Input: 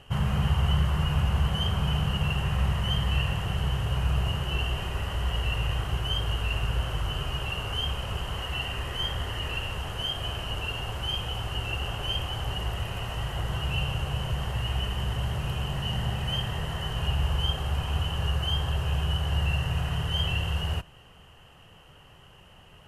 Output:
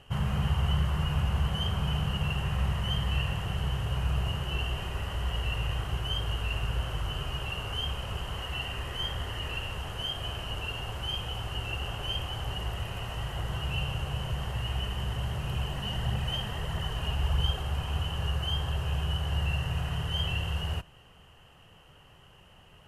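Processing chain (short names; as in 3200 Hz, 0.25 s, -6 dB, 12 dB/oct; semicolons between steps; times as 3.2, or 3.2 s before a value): 15.53–17.62 phaser 1.6 Hz, delay 4.8 ms, feedback 37%; gain -3 dB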